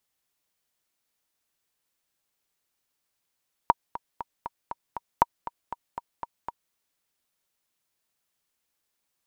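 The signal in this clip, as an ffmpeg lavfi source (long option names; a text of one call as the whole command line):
ffmpeg -f lavfi -i "aevalsrc='pow(10,(-4-15.5*gte(mod(t,6*60/237),60/237))/20)*sin(2*PI*945*mod(t,60/237))*exp(-6.91*mod(t,60/237)/0.03)':duration=3.03:sample_rate=44100" out.wav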